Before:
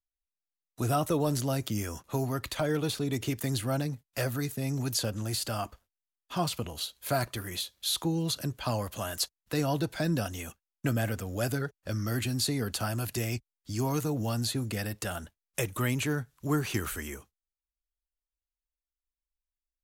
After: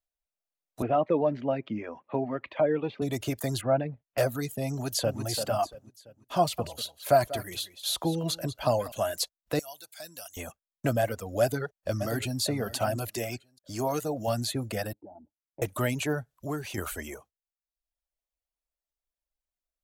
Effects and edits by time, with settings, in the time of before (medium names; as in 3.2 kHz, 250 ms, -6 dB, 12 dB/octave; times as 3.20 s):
0.82–3.02 s: cabinet simulation 180–2500 Hz, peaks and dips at 240 Hz +5 dB, 680 Hz -5 dB, 1.4 kHz -6 dB, 2.4 kHz +3 dB
3.61–4.18 s: low-pass 2.8 kHz 24 dB/octave
4.71–5.21 s: echo throw 340 ms, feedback 35%, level -6 dB
6.39–8.92 s: delay 190 ms -11 dB
9.59–10.37 s: pre-emphasis filter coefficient 0.97
11.41–12.40 s: echo throw 590 ms, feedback 25%, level -9.5 dB
13.11–14.28 s: bass shelf 140 Hz -10 dB
14.93–15.62 s: cascade formant filter u
16.37–16.78 s: compression 1.5:1, threshold -41 dBFS
whole clip: reverb removal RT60 0.71 s; peaking EQ 630 Hz +11.5 dB 0.75 oct